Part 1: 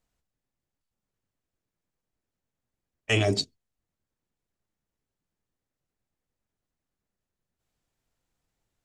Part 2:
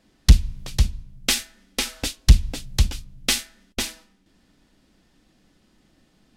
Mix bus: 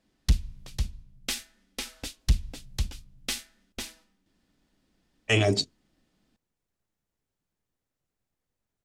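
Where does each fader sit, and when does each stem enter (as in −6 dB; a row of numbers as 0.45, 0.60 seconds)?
+1.0, −10.5 decibels; 2.20, 0.00 seconds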